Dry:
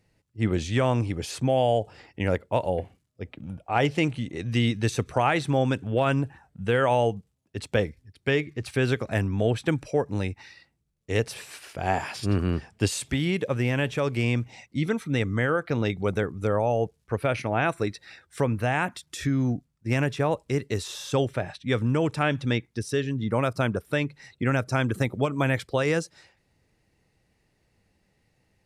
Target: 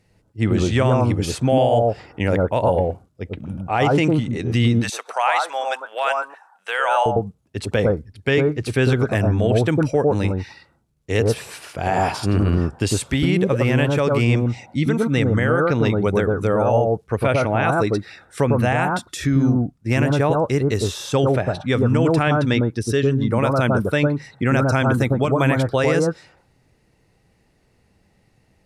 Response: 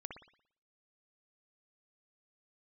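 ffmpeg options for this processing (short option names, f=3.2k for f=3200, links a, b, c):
-filter_complex "[0:a]asettb=1/sr,asplit=3[a][b][c];[a]atrim=end=4.794[d];[b]atrim=start=4.79:end=7.06,asetpts=PTS-STARTPTS,afade=t=in:d=0.004:c=qsin,afade=t=out:st=2.266:d=0.004:c=qsin,highpass=f=710:w=0.5412,highpass=f=710:w=1.3066[e];[c]atrim=start=7.056[f];[d][e]acrossfade=d=0.004:c1=hsin:c2=qsin[g];[g][f]acrossfade=d=0.004:c1=qsin:c2=hsin[h];[1:a]atrim=start_sample=2205,atrim=end_sample=3087,asetrate=24696,aresample=44100[i];[h][i]afir=irnorm=-1:irlink=0,alimiter=level_in=15.5dB:limit=-1dB:release=50:level=0:latency=1,volume=-7dB"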